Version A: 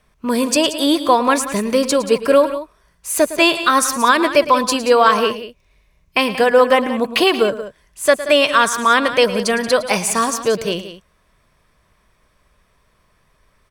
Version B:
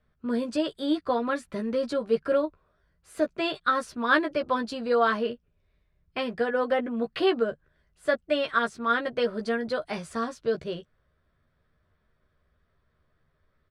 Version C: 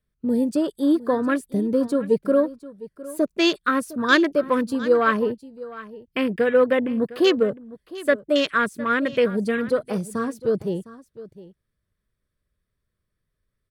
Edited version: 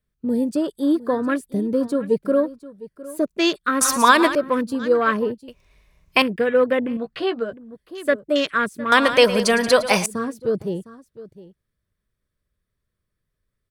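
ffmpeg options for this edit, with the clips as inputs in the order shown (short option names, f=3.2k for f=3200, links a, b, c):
-filter_complex "[0:a]asplit=3[a][b][c];[2:a]asplit=5[d][e][f][g][h];[d]atrim=end=3.812[i];[a]atrim=start=3.808:end=4.352[j];[e]atrim=start=4.348:end=5.482[k];[b]atrim=start=5.478:end=6.222[l];[f]atrim=start=6.218:end=6.972[m];[1:a]atrim=start=6.968:end=7.532[n];[g]atrim=start=7.528:end=8.922[o];[c]atrim=start=8.918:end=10.062[p];[h]atrim=start=10.058[q];[i][j]acrossfade=d=0.004:c1=hsin:c2=hsin[r];[r][k]acrossfade=d=0.004:c1=hsin:c2=hsin[s];[s][l]acrossfade=d=0.004:c1=hsin:c2=hsin[t];[t][m]acrossfade=d=0.004:c1=hsin:c2=hsin[u];[u][n]acrossfade=d=0.004:c1=hsin:c2=hsin[v];[v][o]acrossfade=d=0.004:c1=hsin:c2=hsin[w];[w][p]acrossfade=d=0.004:c1=hsin:c2=hsin[x];[x][q]acrossfade=d=0.004:c1=hsin:c2=hsin"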